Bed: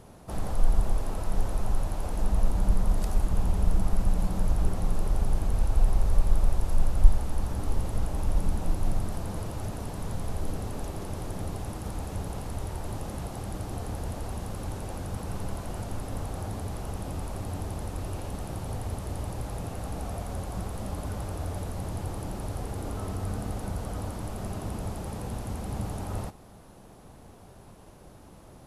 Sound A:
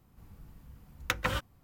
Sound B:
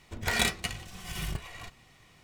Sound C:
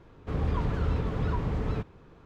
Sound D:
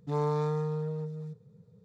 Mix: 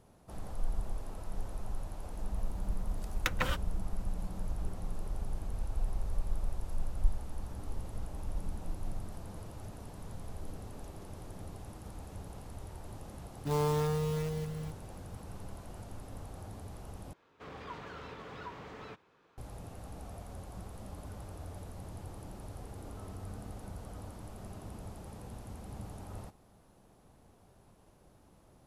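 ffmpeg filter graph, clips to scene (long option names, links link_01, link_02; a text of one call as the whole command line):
ffmpeg -i bed.wav -i cue0.wav -i cue1.wav -i cue2.wav -i cue3.wav -filter_complex "[0:a]volume=-11.5dB[link_01];[1:a]acontrast=86[link_02];[4:a]acrusher=bits=3:mode=log:mix=0:aa=0.000001[link_03];[3:a]highpass=frequency=1000:poles=1[link_04];[link_01]asplit=2[link_05][link_06];[link_05]atrim=end=17.134[link_07];[link_04]atrim=end=2.25,asetpts=PTS-STARTPTS,volume=-4.5dB[link_08];[link_06]atrim=start=19.376[link_09];[link_02]atrim=end=1.63,asetpts=PTS-STARTPTS,volume=-9dB,afade=type=in:duration=0.004:curve=hsin,afade=type=out:start_time=1.626:duration=0.004:curve=hsin,adelay=2160[link_10];[link_03]atrim=end=1.84,asetpts=PTS-STARTPTS,volume=-1.5dB,afade=type=in:duration=0.004:curve=hsin,afade=type=out:start_time=1.836:duration=0.004:curve=hsin,adelay=13380[link_11];[link_07][link_08]acrossfade=duration=0.004:curve1=hsin:curve2=hsin[link_12];[link_12][link_09]acrossfade=duration=0.004:curve1=hsin:curve2=hsin[link_13];[link_13][link_10][link_11]amix=inputs=3:normalize=0" out.wav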